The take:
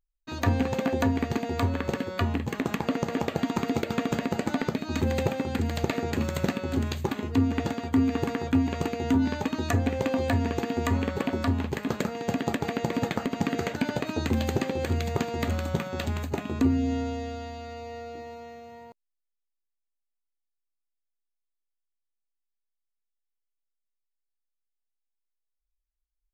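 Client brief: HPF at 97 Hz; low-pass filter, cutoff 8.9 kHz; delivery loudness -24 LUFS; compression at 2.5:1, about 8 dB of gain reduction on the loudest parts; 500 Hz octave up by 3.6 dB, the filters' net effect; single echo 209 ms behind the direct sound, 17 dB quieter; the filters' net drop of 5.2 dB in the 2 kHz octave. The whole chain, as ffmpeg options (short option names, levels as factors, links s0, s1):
-af "highpass=97,lowpass=8900,equalizer=f=500:t=o:g=4.5,equalizer=f=2000:t=o:g=-7,acompressor=threshold=0.0251:ratio=2.5,aecho=1:1:209:0.141,volume=3.35"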